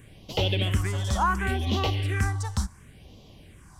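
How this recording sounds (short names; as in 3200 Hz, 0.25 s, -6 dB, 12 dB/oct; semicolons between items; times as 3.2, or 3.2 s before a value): phasing stages 4, 0.7 Hz, lowest notch 390–1600 Hz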